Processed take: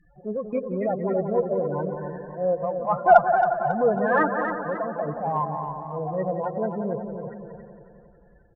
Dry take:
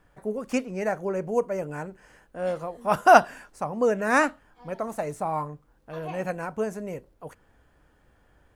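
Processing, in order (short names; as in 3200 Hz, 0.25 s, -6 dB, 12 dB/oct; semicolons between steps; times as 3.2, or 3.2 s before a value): LPF 2600 Hz 12 dB/oct; low shelf 400 Hz -4 dB; comb 5.8 ms, depth 39%; loudest bins only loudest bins 8; in parallel at -2 dB: compressor, threshold -37 dBFS, peak gain reduction 24.5 dB; on the sum: transient shaper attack -6 dB, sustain -2 dB; added harmonics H 6 -40 dB, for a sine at -5.5 dBFS; on a send: analogue delay 0.179 s, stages 2048, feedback 62%, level -8.5 dB; on the sum: warbling echo 0.273 s, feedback 41%, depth 63 cents, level -8 dB; gain +4 dB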